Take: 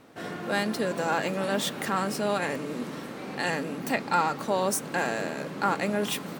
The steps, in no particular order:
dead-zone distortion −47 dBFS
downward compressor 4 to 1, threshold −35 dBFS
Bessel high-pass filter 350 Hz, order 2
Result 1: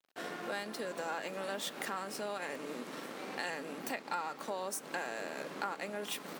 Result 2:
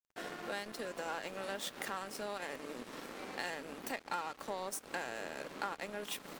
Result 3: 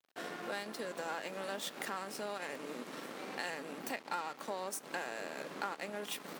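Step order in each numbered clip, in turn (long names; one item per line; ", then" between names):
dead-zone distortion, then downward compressor, then Bessel high-pass filter
downward compressor, then Bessel high-pass filter, then dead-zone distortion
downward compressor, then dead-zone distortion, then Bessel high-pass filter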